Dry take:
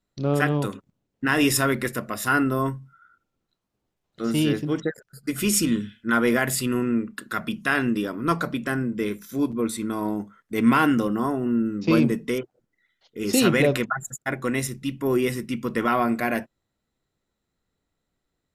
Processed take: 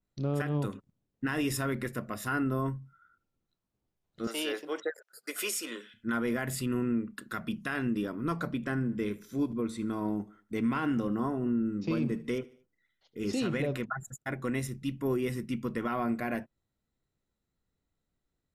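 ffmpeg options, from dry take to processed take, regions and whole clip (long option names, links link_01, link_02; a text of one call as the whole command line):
ffmpeg -i in.wav -filter_complex "[0:a]asettb=1/sr,asplit=3[link_01][link_02][link_03];[link_01]atrim=end=4.274[link_04];[link_02]atrim=start=4.27:end=5.94,asetpts=PTS-STARTPTS,afade=type=in:duration=0.004:curve=qsin,afade=type=out:start_time=1.666:duration=0.004:curve=qsin,highpass=frequency=470:width=0.5412,highpass=frequency=470:width=1.3066,acontrast=28[link_05];[link_03]atrim=start=5.936[link_06];[link_04][link_05]acrossfade=duration=0.004:curve1=hsin:curve2=qsin[link_07];[link_07][link_06]acrossfade=duration=0.004:curve1=qsin:curve2=hsin,asettb=1/sr,asplit=3[link_08][link_09][link_10];[link_08]atrim=end=8.554[link_11];[link_09]atrim=start=8.55:end=13.59,asetpts=PTS-STARTPTS,afade=type=in:duration=0.004:curve=qsin,afade=type=out:start_time=5.036:duration=0.004:curve=qsin,acrossover=split=8100[link_12][link_13];[link_13]acompressor=threshold=-53dB:ratio=4:attack=1:release=60[link_14];[link_12][link_14]amix=inputs=2:normalize=0,aecho=1:1:75|150|225:0.0891|0.041|0.0189,atrim=end_sample=222264[link_15];[link_10]atrim=start=13.586[link_16];[link_11][link_15]acrossfade=duration=0.004:curve1=hsin:curve2=qsin[link_17];[link_17][link_16]acrossfade=duration=0.004:curve1=qsin:curve2=hsin,lowshelf=frequency=220:gain=6.5,alimiter=limit=-13.5dB:level=0:latency=1:release=146,adynamicequalizer=threshold=0.00891:dfrequency=3000:dqfactor=0.7:tfrequency=3000:tqfactor=0.7:attack=5:release=100:ratio=0.375:range=2.5:mode=cutabove:tftype=highshelf,volume=-8dB" out.wav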